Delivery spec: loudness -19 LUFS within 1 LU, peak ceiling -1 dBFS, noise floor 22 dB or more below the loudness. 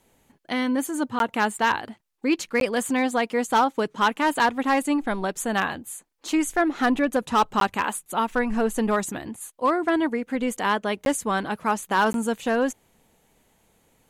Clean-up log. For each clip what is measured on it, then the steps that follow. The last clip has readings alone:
clipped samples 0.5%; clipping level -13.0 dBFS; dropouts 5; longest dropout 12 ms; loudness -24.0 LUFS; peak level -13.0 dBFS; loudness target -19.0 LUFS
-> clip repair -13 dBFS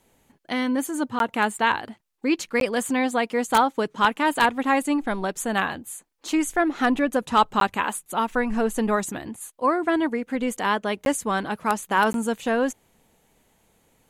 clipped samples 0.0%; dropouts 5; longest dropout 12 ms
-> interpolate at 1.19/2.60/7.60/11.05/12.13 s, 12 ms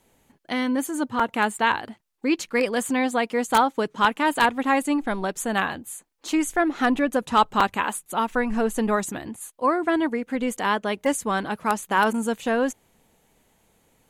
dropouts 0; loudness -24.0 LUFS; peak level -4.0 dBFS; loudness target -19.0 LUFS
-> trim +5 dB; peak limiter -1 dBFS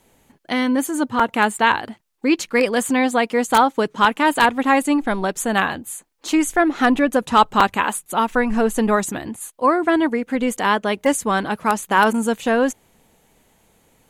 loudness -19.0 LUFS; peak level -1.0 dBFS; noise floor -60 dBFS

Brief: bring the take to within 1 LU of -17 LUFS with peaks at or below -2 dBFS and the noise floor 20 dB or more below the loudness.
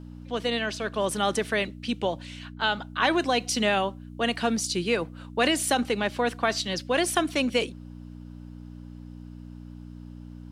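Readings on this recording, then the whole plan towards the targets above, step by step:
hum 60 Hz; highest harmonic 300 Hz; hum level -40 dBFS; loudness -26.5 LUFS; peak level -9.0 dBFS; loudness target -17.0 LUFS
-> de-hum 60 Hz, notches 5; trim +9.5 dB; peak limiter -2 dBFS

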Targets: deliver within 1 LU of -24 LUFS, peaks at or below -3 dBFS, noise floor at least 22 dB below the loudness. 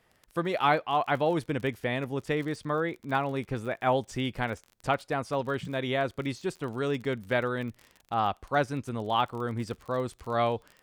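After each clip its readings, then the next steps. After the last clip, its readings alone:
tick rate 34 per s; loudness -30.0 LUFS; peak level -11.0 dBFS; loudness target -24.0 LUFS
-> de-click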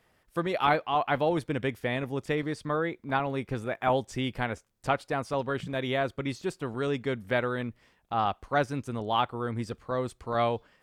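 tick rate 0 per s; loudness -30.5 LUFS; peak level -10.5 dBFS; loudness target -24.0 LUFS
-> trim +6.5 dB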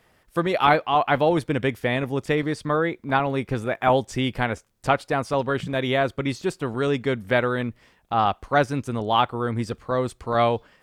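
loudness -24.0 LUFS; peak level -4.0 dBFS; noise floor -62 dBFS

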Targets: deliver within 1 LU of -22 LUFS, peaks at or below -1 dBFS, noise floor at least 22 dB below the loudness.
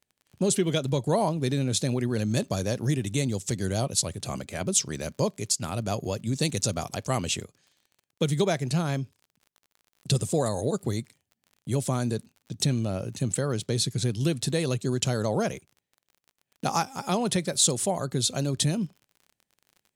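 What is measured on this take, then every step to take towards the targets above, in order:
tick rate 43 per s; loudness -27.5 LUFS; peak level -7.5 dBFS; loudness target -22.0 LUFS
-> de-click; trim +5.5 dB

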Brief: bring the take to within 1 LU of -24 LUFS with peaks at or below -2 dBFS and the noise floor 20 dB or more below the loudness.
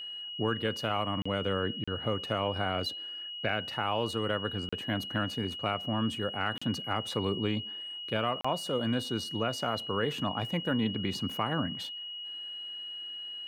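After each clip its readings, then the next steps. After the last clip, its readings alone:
dropouts 5; longest dropout 35 ms; steady tone 2.9 kHz; tone level -38 dBFS; loudness -32.5 LUFS; peak level -17.0 dBFS; loudness target -24.0 LUFS
-> interpolate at 1.22/1.84/4.69/6.58/8.41 s, 35 ms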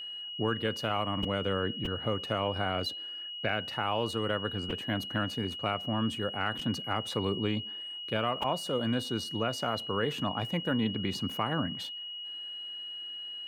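dropouts 0; steady tone 2.9 kHz; tone level -38 dBFS
-> band-stop 2.9 kHz, Q 30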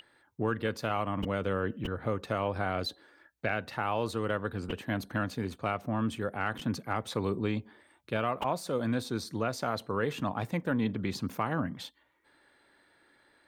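steady tone not found; loudness -33.0 LUFS; peak level -17.5 dBFS; loudness target -24.0 LUFS
-> trim +9 dB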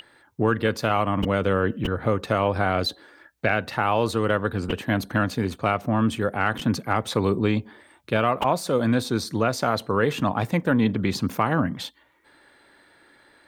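loudness -24.0 LUFS; peak level -8.5 dBFS; noise floor -58 dBFS

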